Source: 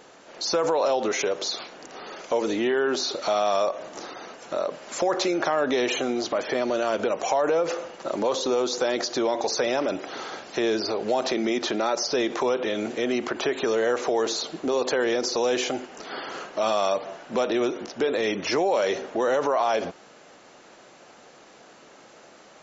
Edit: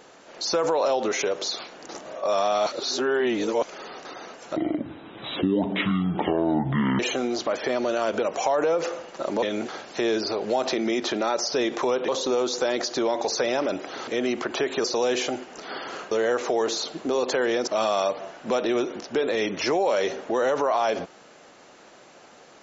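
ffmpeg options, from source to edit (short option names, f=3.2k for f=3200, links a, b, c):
-filter_complex "[0:a]asplit=12[a][b][c][d][e][f][g][h][i][j][k][l];[a]atrim=end=1.892[m];[b]atrim=start=1.888:end=4.052,asetpts=PTS-STARTPTS,areverse[n];[c]atrim=start=4.048:end=4.564[o];[d]atrim=start=4.56:end=5.85,asetpts=PTS-STARTPTS,asetrate=23373,aresample=44100[p];[e]atrim=start=5.846:end=8.282[q];[f]atrim=start=12.668:end=12.932[r];[g]atrim=start=10.268:end=12.672[s];[h]atrim=start=8.278:end=10.272[t];[i]atrim=start=12.928:end=13.702[u];[j]atrim=start=15.258:end=16.532[v];[k]atrim=start=13.698:end=15.262[w];[l]atrim=start=16.528[x];[m][n]acrossfade=d=0.004:c1=hsin:c2=hsin[y];[y][o]acrossfade=d=0.004:c1=hsin:c2=hsin[z];[z][p]acrossfade=d=0.004:c1=hsin:c2=hsin[aa];[aa][q]acrossfade=d=0.004:c1=hsin:c2=hsin[ab];[ab][r]acrossfade=d=0.004:c1=hsin:c2=hsin[ac];[ac][s]acrossfade=d=0.004:c1=hsin:c2=hsin[ad];[ad][t]acrossfade=d=0.004:c1=hsin:c2=hsin[ae];[ae][u]acrossfade=d=0.004:c1=hsin:c2=hsin[af];[af][v]acrossfade=d=0.004:c1=hsin:c2=hsin[ag];[ag][w]acrossfade=d=0.004:c1=hsin:c2=hsin[ah];[ah][x]acrossfade=d=0.004:c1=hsin:c2=hsin"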